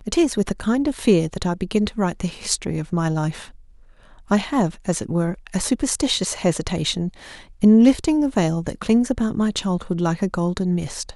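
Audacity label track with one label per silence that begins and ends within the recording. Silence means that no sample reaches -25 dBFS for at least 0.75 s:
3.400000	4.310000	silence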